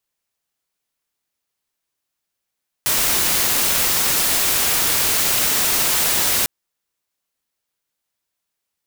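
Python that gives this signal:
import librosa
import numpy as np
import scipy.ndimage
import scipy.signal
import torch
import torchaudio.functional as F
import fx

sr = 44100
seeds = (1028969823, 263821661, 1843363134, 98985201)

y = fx.noise_colour(sr, seeds[0], length_s=3.6, colour='white', level_db=-18.0)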